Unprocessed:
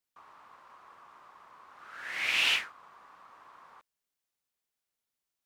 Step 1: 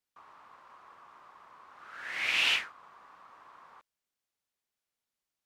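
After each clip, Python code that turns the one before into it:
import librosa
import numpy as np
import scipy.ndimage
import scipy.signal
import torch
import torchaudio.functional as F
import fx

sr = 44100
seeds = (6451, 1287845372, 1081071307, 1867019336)

y = fx.high_shelf(x, sr, hz=9900.0, db=-6.5)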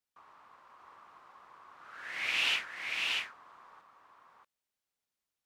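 y = x + 10.0 ** (-3.0 / 20.0) * np.pad(x, (int(635 * sr / 1000.0), 0))[:len(x)]
y = F.gain(torch.from_numpy(y), -3.0).numpy()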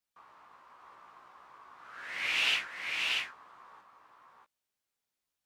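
y = fx.doubler(x, sr, ms=16.0, db=-5)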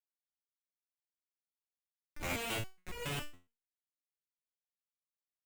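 y = x + 10.0 ** (-21.5 / 20.0) * np.pad(x, (int(134 * sr / 1000.0), 0))[:len(x)]
y = fx.schmitt(y, sr, flips_db=-29.0)
y = fx.resonator_held(y, sr, hz=7.2, low_hz=88.0, high_hz=480.0)
y = F.gain(torch.from_numpy(y), 13.0).numpy()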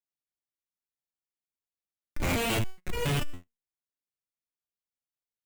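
y = fx.low_shelf(x, sr, hz=410.0, db=8.0)
y = fx.leveller(y, sr, passes=3)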